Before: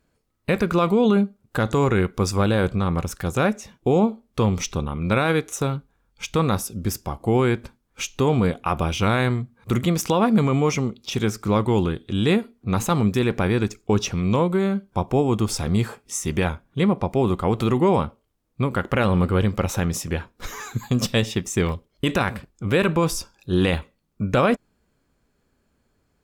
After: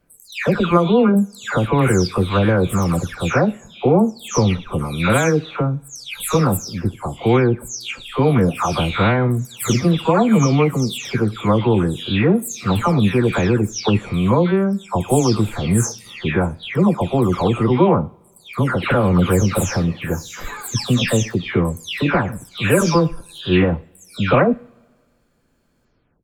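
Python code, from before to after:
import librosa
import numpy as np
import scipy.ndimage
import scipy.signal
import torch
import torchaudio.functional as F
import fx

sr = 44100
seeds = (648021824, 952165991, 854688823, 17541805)

y = fx.spec_delay(x, sr, highs='early', ms=381)
y = fx.rev_double_slope(y, sr, seeds[0], early_s=0.54, late_s=1.9, knee_db=-18, drr_db=19.5)
y = F.gain(torch.from_numpy(y), 5.0).numpy()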